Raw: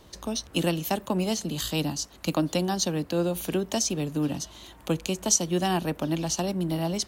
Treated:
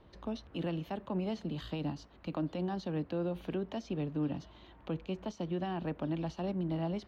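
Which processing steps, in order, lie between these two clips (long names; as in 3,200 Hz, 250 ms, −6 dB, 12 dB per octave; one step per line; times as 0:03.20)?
0:03.61–0:05.88: parametric band 9,700 Hz −10.5 dB 0.29 octaves
brickwall limiter −20 dBFS, peak gain reduction 11 dB
high-frequency loss of the air 370 metres
level −5.5 dB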